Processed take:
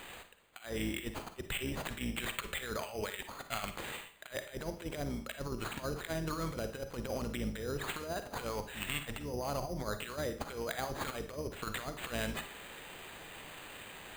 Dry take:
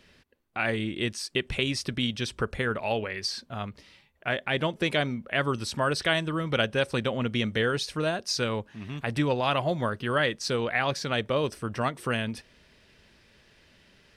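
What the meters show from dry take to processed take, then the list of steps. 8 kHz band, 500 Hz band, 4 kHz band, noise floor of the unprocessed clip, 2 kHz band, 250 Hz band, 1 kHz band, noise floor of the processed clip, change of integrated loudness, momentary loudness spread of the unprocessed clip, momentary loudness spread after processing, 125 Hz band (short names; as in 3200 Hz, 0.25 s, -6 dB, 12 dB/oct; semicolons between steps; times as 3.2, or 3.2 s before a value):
-5.5 dB, -11.0 dB, -12.0 dB, -61 dBFS, -11.5 dB, -10.0 dB, -10.5 dB, -53 dBFS, -11.0 dB, 6 LU, 10 LU, -11.0 dB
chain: octaver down 2 oct, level -1 dB; treble ducked by the level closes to 420 Hz, closed at -21 dBFS; pre-emphasis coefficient 0.97; negative-ratio compressor -54 dBFS, ratio -0.5; sample-rate reducer 5500 Hz, jitter 0%; Schroeder reverb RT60 0.42 s, DRR 8.5 dB; gain +15.5 dB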